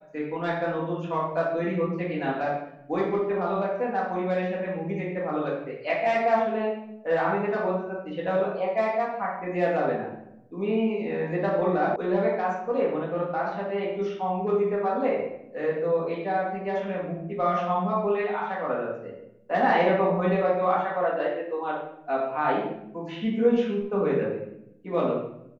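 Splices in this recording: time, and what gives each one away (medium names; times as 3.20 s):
11.96 s: sound stops dead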